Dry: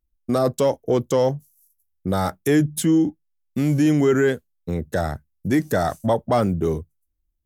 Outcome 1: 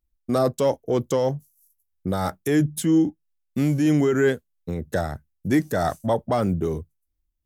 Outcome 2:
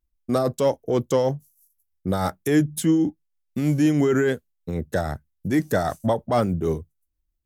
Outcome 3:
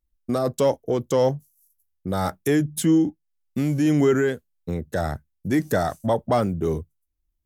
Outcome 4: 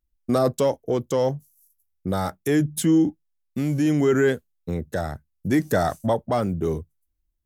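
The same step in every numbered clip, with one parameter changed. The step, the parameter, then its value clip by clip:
tremolo, rate: 3.1 Hz, 6.3 Hz, 1.8 Hz, 0.74 Hz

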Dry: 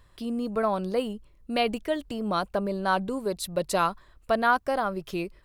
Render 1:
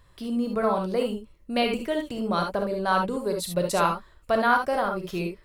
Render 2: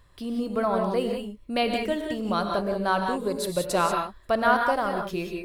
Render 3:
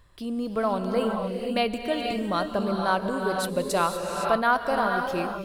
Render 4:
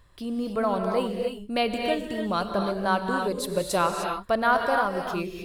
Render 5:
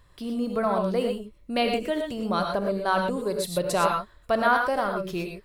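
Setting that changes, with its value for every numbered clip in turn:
gated-style reverb, gate: 90 ms, 210 ms, 540 ms, 330 ms, 140 ms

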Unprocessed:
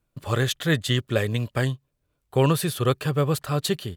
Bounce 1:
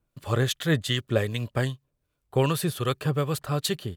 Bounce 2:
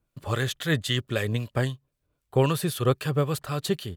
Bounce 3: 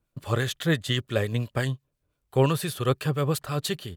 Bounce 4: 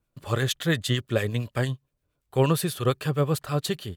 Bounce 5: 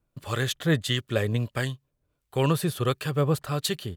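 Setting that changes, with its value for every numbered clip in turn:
harmonic tremolo, rate: 2.6 Hz, 3.8 Hz, 5.8 Hz, 8.7 Hz, 1.5 Hz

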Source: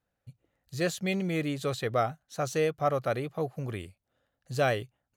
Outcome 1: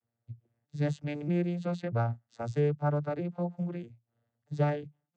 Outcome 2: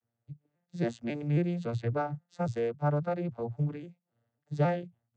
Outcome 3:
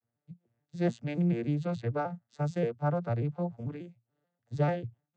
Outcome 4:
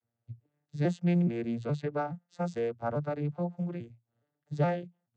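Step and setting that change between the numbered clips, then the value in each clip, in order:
vocoder on a broken chord, a note every: 636 ms, 273 ms, 146 ms, 421 ms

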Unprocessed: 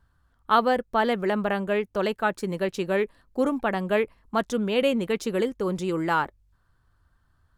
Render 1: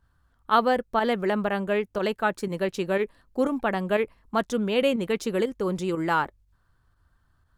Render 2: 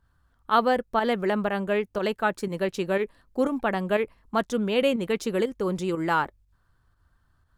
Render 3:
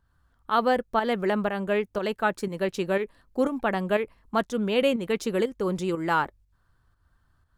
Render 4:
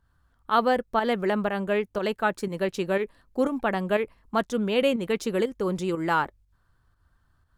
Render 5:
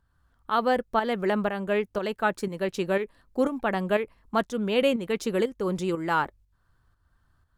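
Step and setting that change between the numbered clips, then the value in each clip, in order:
volume shaper, release: 66 ms, 99 ms, 231 ms, 150 ms, 386 ms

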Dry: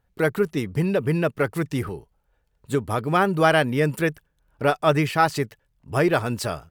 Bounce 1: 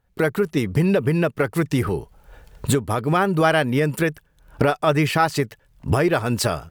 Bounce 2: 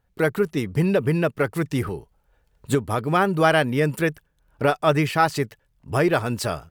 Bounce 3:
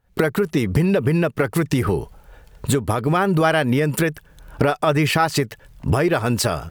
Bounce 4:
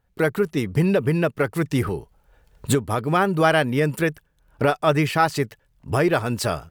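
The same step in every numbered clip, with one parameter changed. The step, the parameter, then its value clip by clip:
recorder AGC, rising by: 34 dB/s, 5.3 dB/s, 89 dB/s, 13 dB/s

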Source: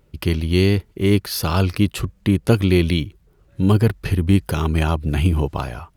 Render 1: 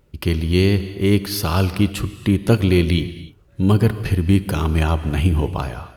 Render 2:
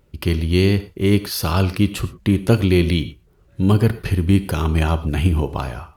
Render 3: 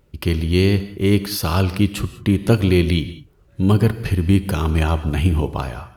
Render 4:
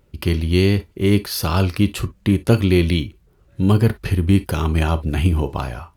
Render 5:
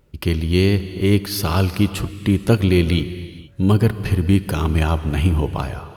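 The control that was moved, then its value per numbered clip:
gated-style reverb, gate: 320 ms, 140 ms, 220 ms, 80 ms, 500 ms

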